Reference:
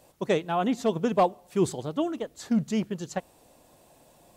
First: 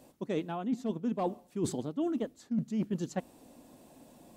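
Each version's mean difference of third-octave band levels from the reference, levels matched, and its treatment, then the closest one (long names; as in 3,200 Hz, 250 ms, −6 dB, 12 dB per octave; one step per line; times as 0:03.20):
5.0 dB: parametric band 250 Hz +13 dB 0.88 octaves
reversed playback
downward compressor 16 to 1, threshold −26 dBFS, peak gain reduction 18 dB
reversed playback
level −2.5 dB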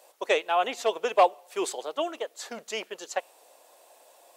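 7.5 dB: high-pass filter 470 Hz 24 dB per octave
dynamic equaliser 2,600 Hz, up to +6 dB, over −52 dBFS, Q 2.2
level +3 dB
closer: first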